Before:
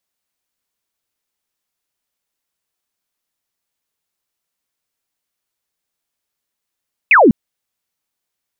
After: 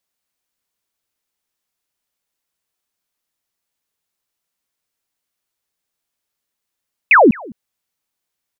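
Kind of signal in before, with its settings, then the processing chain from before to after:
laser zap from 2700 Hz, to 190 Hz, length 0.20 s sine, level -5 dB
echo 0.21 s -24 dB

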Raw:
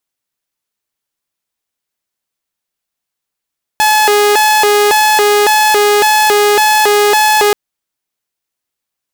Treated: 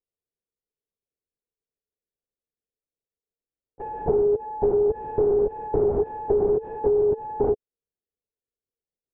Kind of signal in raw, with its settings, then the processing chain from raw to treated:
siren hi-lo 414–856 Hz 1.8/s saw -4.5 dBFS 3.73 s
ladder low-pass 520 Hz, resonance 60%; LPC vocoder at 8 kHz whisper; compressor 4:1, threshold -19 dBFS

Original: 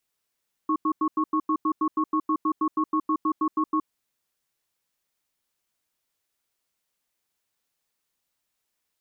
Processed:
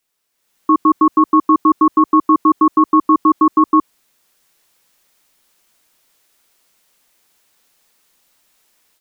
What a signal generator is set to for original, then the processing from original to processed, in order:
cadence 312 Hz, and 1100 Hz, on 0.07 s, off 0.09 s, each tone -23 dBFS 3.13 s
in parallel at +0.5 dB: limiter -26.5 dBFS; on the sum: AGC gain up to 13 dB; bell 90 Hz -9.5 dB 0.99 oct

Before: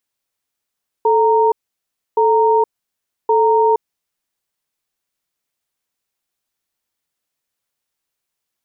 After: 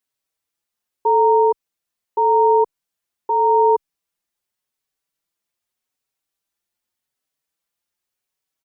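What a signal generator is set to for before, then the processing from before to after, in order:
cadence 439 Hz, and 927 Hz, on 0.47 s, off 0.65 s, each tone -13 dBFS 3.06 s
endless flanger 4.9 ms +0.84 Hz

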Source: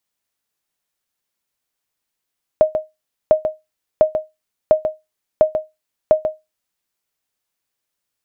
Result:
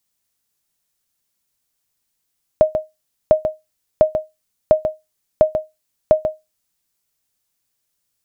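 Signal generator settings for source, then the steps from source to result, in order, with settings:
sonar ping 623 Hz, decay 0.20 s, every 0.70 s, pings 6, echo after 0.14 s, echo -8 dB -3 dBFS
tone controls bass +7 dB, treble +7 dB

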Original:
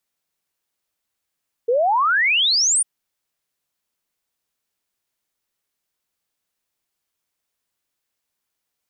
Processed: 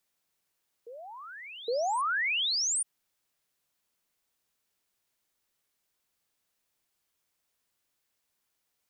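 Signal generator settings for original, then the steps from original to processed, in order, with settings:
log sweep 450 Hz -> 9700 Hz 1.15 s -14.5 dBFS
limiter -26 dBFS; reverse echo 0.814 s -15.5 dB

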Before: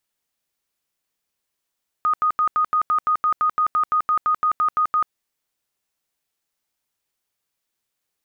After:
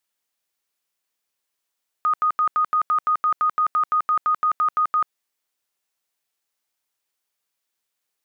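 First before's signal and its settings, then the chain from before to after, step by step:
tone bursts 1240 Hz, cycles 107, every 0.17 s, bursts 18, -15.5 dBFS
low shelf 260 Hz -10 dB

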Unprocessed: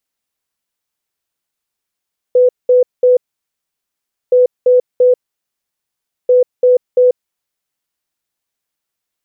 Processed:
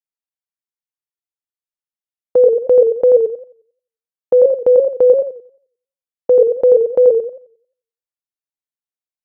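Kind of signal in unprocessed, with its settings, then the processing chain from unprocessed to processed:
beep pattern sine 499 Hz, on 0.14 s, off 0.20 s, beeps 3, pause 1.15 s, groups 3, -5.5 dBFS
gate with hold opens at -9 dBFS; warbling echo 89 ms, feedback 32%, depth 159 cents, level -5.5 dB

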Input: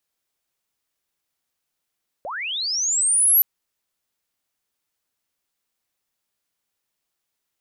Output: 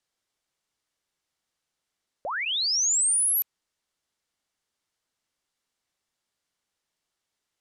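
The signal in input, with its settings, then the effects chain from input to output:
chirp linear 500 Hz -> 12000 Hz -28 dBFS -> -11.5 dBFS 1.17 s
LPF 8400 Hz 12 dB/oct; notch 2500 Hz, Q 20

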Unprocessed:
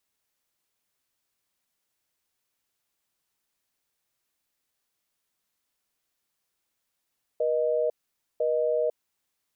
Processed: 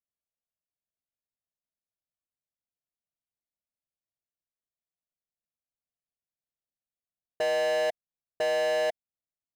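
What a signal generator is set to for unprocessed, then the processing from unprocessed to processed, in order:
call progress tone busy tone, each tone -25 dBFS 1.66 s
elliptic low-pass 700 Hz; bell 360 Hz -10.5 dB 1.1 oct; sample leveller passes 5

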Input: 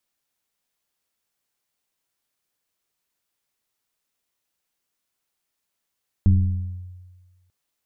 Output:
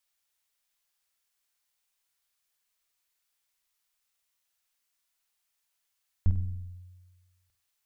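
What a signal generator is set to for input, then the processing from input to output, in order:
FM tone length 1.24 s, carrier 90.6 Hz, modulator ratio 1.11, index 0.78, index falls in 0.65 s linear, decay 1.43 s, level -10 dB
bell 230 Hz -15 dB 2.8 oct; on a send: flutter echo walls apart 8.4 m, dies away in 0.4 s

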